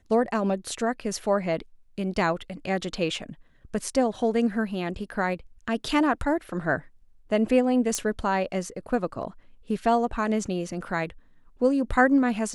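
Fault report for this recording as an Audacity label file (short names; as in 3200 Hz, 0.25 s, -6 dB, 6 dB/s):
7.950000	7.950000	pop -12 dBFS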